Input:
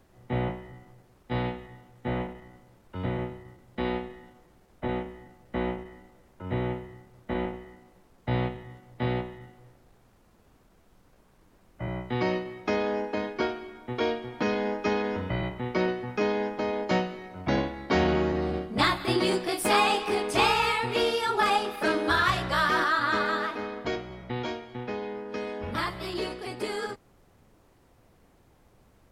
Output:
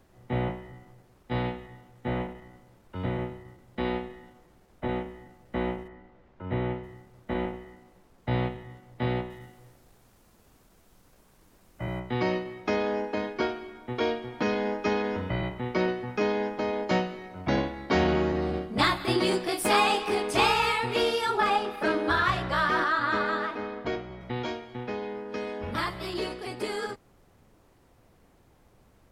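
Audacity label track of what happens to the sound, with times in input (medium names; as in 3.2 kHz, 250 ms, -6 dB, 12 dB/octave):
5.870000	6.820000	low-pass 2.3 kHz -> 4.9 kHz
9.300000	12.000000	treble shelf 4.3 kHz +9.5 dB
21.370000	24.210000	treble shelf 4.6 kHz -10 dB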